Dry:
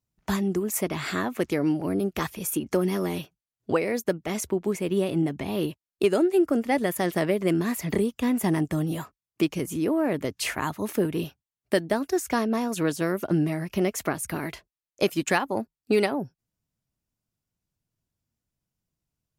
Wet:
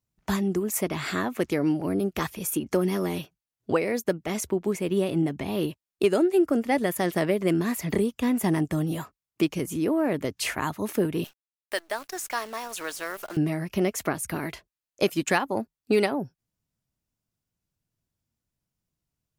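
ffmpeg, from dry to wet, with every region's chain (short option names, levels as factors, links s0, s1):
-filter_complex "[0:a]asettb=1/sr,asplit=3[s0][s1][s2];[s0]atrim=end=11.244[s3];[s1]atrim=start=11.24:end=13.37,asetpts=PTS-STARTPTS,afade=t=in:d=0.004:c=qsin,afade=t=out:st=2.126:d=0.004:c=qsin,highpass=810,acrusher=bits=8:dc=4:mix=0:aa=0.000001[s4];[s2]atrim=start=13.366[s5];[s3][s4]acrossfade=d=0.004:c1=hsin:c2=qsin[s6];[s6][s5]acrossfade=d=0.004:c1=qsin:c2=hsin"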